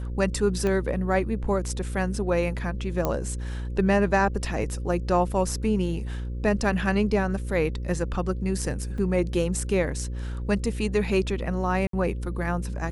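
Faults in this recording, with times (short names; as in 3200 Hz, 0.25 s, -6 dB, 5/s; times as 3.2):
buzz 60 Hz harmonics 9 -31 dBFS
0.67 pop -15 dBFS
3.05 pop -11 dBFS
8.98 gap 3.7 ms
11.87–11.93 gap 63 ms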